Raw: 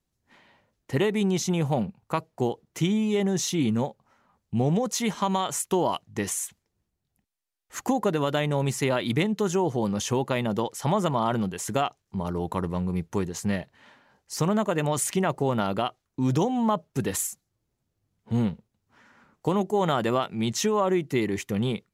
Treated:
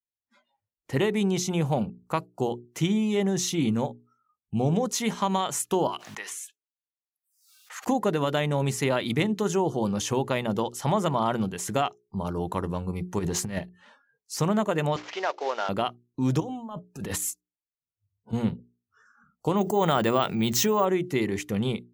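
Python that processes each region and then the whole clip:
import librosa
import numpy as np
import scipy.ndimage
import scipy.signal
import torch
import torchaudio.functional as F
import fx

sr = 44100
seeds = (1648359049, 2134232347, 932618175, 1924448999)

y = fx.chain(x, sr, fx.highpass(hz=1100.0, slope=12),
    fx.high_shelf(hz=4500.0, db=-9.5),
    fx.pre_swell(db_per_s=72.0), at=(5.87, 7.87))
y = fx.chain(y, sr, fx.over_compress(threshold_db=-30.0, ratio=-0.5),
    fx.leveller(passes=1), at=(13.19, 13.59))
y = fx.chain(y, sr, fx.cvsd(bps=32000),
    fx.highpass(hz=450.0, slope=24),
    fx.peak_eq(hz=2200.0, db=3.0, octaves=1.5), at=(14.96, 15.69))
y = fx.chain(y, sr, fx.over_compress(threshold_db=-32.0, ratio=-1.0),
    fx.transient(attack_db=-6, sustain_db=-10), at=(16.4, 18.33))
y = fx.chain(y, sr, fx.resample_bad(factor=2, down='filtered', up='hold'),
    fx.high_shelf(hz=7100.0, db=4.0),
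    fx.env_flatten(amount_pct=50), at=(19.57, 20.85))
y = fx.noise_reduce_blind(y, sr, reduce_db=30)
y = fx.hum_notches(y, sr, base_hz=60, count=7)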